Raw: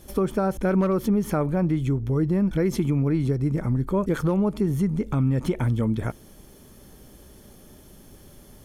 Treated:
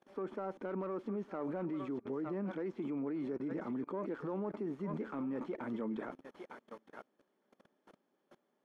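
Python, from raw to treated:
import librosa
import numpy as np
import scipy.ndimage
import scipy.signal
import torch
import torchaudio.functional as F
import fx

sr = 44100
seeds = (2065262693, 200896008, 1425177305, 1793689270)

p1 = fx.tracing_dist(x, sr, depth_ms=0.23)
p2 = scipy.signal.sosfilt(scipy.signal.butter(4, 200.0, 'highpass', fs=sr, output='sos'), p1)
p3 = fx.tilt_eq(p2, sr, slope=4.0)
p4 = p3 + fx.echo_thinned(p3, sr, ms=907, feedback_pct=20, hz=870.0, wet_db=-12, dry=0)
p5 = fx.dynamic_eq(p4, sr, hz=300.0, q=1.2, threshold_db=-44.0, ratio=4.0, max_db=4)
p6 = fx.level_steps(p5, sr, step_db=22)
p7 = np.clip(p6, -10.0 ** (-37.5 / 20.0), 10.0 ** (-37.5 / 20.0))
p8 = scipy.signal.sosfilt(scipy.signal.butter(2, 1200.0, 'lowpass', fs=sr, output='sos'), p7)
p9 = fx.upward_expand(p8, sr, threshold_db=-57.0, expansion=1.5)
y = p9 * 10.0 ** (7.5 / 20.0)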